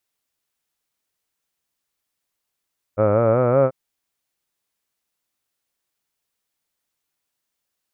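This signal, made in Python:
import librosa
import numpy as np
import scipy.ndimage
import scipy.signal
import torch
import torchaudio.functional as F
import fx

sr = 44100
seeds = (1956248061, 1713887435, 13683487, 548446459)

y = fx.formant_vowel(sr, seeds[0], length_s=0.74, hz=101.0, glide_st=5.5, vibrato_hz=5.3, vibrato_st=0.9, f1_hz=550.0, f2_hz=1300.0, f3_hz=2300.0)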